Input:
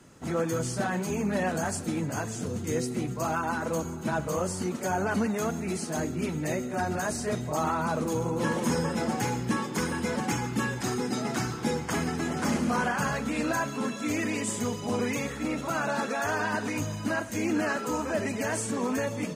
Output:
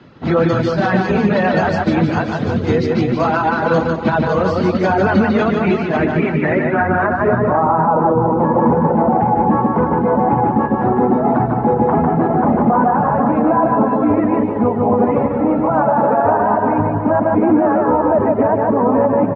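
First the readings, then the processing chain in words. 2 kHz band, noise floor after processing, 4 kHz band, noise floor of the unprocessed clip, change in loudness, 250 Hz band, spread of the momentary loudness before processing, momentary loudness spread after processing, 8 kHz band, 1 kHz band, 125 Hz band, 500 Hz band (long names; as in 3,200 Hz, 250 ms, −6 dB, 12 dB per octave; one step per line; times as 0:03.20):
+9.0 dB, −20 dBFS, can't be measured, −36 dBFS, +14.5 dB, +14.5 dB, 3 LU, 3 LU, below −15 dB, +17.0 dB, +13.5 dB, +16.0 dB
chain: high-pass filter 60 Hz
reverb reduction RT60 1.1 s
high-shelf EQ 3,400 Hz −7 dB
low-pass filter sweep 4,200 Hz → 850 Hz, 0:05.12–0:07.80
high-frequency loss of the air 200 metres
on a send: reverse bouncing-ball delay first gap 150 ms, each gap 1.15×, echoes 5
on the sum: boost into a limiter +21.5 dB
expander for the loud parts 1.5 to 1, over −18 dBFS
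level −3.5 dB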